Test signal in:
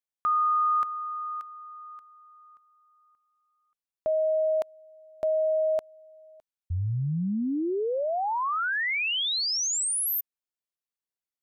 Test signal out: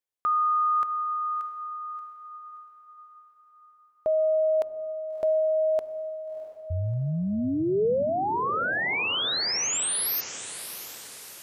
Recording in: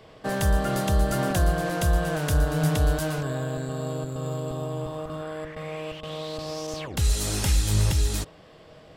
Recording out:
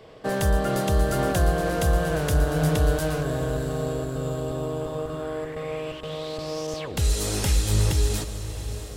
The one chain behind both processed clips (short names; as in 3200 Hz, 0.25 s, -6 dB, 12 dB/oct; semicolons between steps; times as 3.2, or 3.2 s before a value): bell 450 Hz +5 dB 0.73 oct; diffused feedback echo 0.659 s, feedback 51%, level -11.5 dB